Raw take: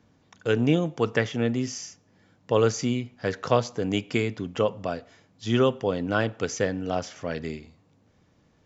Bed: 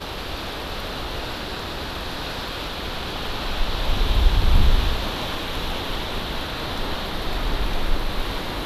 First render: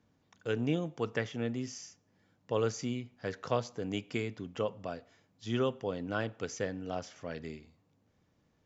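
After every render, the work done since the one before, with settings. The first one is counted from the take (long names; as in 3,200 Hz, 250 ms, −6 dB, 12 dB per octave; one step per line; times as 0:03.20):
level −9.5 dB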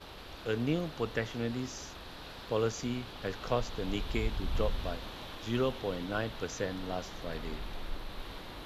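mix in bed −17 dB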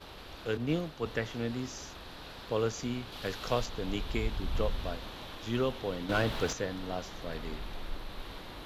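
0:00.57–0:01.06: multiband upward and downward expander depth 70%
0:03.12–0:03.66: high-shelf EQ 3,200 Hz +8.5 dB
0:06.09–0:06.53: leveller curve on the samples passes 2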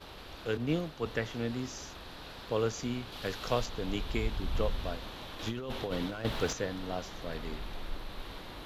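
0:05.39–0:06.25: compressor whose output falls as the input rises −36 dBFS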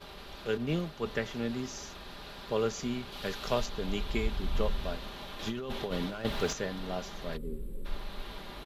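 0:07.37–0:07.85: gain on a spectral selection 570–7,500 Hz −25 dB
comb filter 5 ms, depth 45%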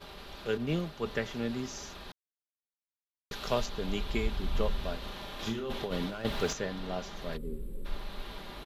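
0:02.12–0:03.31: silence
0:04.98–0:05.74: flutter between parallel walls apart 6.1 metres, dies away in 0.32 s
0:06.57–0:07.17: high-shelf EQ 10,000 Hz −8 dB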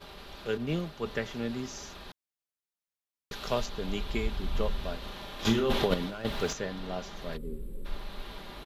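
0:05.45–0:05.94: clip gain +9 dB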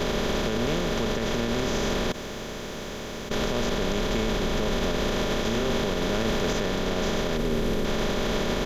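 compressor on every frequency bin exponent 0.2
brickwall limiter −17 dBFS, peak gain reduction 9.5 dB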